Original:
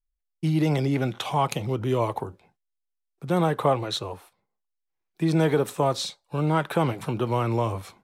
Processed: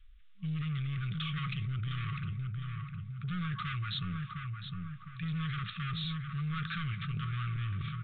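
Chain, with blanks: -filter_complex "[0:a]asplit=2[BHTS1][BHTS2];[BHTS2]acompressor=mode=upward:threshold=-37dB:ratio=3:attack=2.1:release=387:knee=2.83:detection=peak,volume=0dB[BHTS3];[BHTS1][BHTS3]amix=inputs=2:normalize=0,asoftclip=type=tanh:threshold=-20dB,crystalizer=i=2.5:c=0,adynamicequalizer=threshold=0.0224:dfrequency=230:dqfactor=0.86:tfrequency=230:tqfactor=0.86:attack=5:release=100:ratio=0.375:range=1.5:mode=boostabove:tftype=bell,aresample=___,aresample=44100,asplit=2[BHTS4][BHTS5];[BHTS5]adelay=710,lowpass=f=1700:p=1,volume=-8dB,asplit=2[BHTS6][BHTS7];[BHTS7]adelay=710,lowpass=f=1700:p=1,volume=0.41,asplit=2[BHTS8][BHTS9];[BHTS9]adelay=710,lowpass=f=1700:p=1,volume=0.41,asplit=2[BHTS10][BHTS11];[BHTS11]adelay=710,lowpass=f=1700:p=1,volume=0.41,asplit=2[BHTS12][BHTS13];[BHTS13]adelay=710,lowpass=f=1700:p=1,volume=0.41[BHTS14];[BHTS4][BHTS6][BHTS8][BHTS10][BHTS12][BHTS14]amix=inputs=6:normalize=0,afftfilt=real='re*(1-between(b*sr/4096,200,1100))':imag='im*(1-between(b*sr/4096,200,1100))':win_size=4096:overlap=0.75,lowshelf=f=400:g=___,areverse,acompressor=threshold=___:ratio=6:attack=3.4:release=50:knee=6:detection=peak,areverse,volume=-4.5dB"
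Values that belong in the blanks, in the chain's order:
8000, 4, -29dB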